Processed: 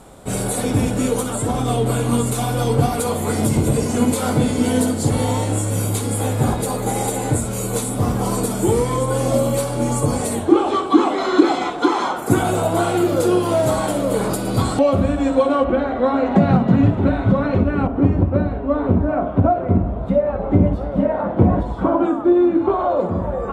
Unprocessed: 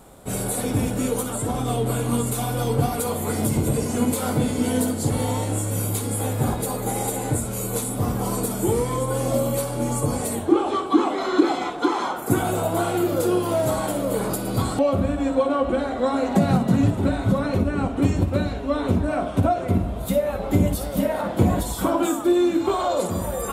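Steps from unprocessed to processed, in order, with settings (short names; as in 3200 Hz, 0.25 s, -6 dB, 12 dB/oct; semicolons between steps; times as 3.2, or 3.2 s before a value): LPF 10000 Hz 12 dB/oct, from 15.64 s 2600 Hz, from 17.87 s 1300 Hz; gain +4.5 dB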